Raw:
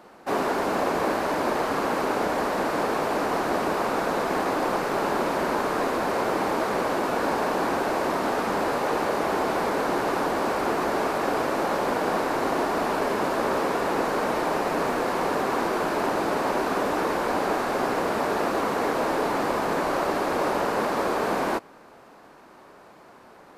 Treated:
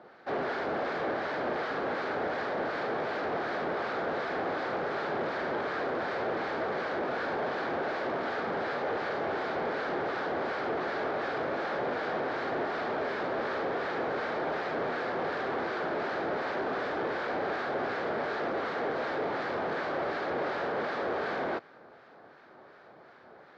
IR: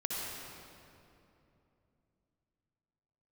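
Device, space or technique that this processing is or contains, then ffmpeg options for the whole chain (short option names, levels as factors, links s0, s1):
guitar amplifier with harmonic tremolo: -filter_complex "[0:a]acrossover=split=1200[s0][s1];[s0]aeval=exprs='val(0)*(1-0.5/2+0.5/2*cos(2*PI*2.7*n/s))':c=same[s2];[s1]aeval=exprs='val(0)*(1-0.5/2-0.5/2*cos(2*PI*2.7*n/s))':c=same[s3];[s2][s3]amix=inputs=2:normalize=0,asoftclip=type=tanh:threshold=0.0531,highpass=100,equalizer=f=200:t=q:w=4:g=-6,equalizer=f=290:t=q:w=4:g=-5,equalizer=f=1000:t=q:w=4:g=-7,equalizer=f=1600:t=q:w=4:g=3,equalizer=f=2700:t=q:w=4:g=-7,lowpass=f=4100:w=0.5412,lowpass=f=4100:w=1.3066"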